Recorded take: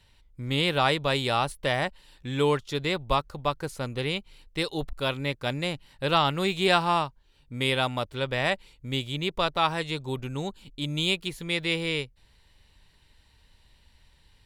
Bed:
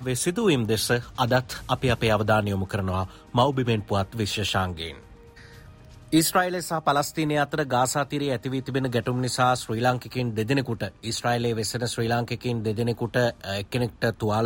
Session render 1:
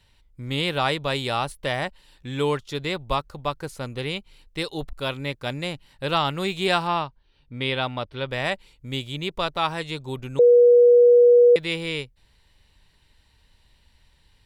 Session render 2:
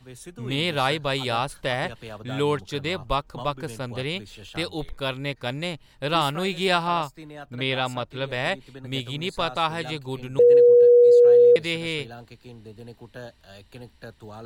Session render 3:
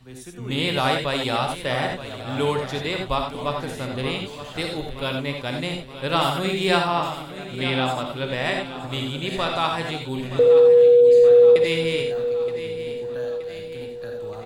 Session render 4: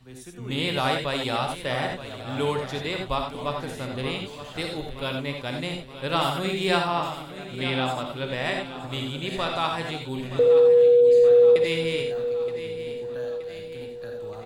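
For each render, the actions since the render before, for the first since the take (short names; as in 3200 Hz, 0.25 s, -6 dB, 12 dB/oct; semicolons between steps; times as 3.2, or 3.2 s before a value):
6.87–8.3 polynomial smoothing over 15 samples; 10.39–11.56 bleep 483 Hz -10 dBFS
add bed -17 dB
feedback echo 0.923 s, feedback 57%, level -13 dB; non-linear reverb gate 0.11 s rising, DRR 3 dB
gain -3 dB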